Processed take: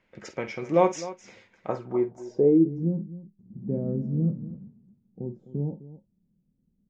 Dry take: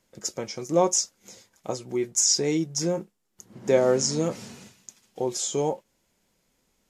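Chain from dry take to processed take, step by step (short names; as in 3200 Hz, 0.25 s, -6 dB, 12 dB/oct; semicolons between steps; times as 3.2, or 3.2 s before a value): tapped delay 49/257 ms -12/-15.5 dB; low-pass sweep 2300 Hz -> 190 Hz, 1.56–2.97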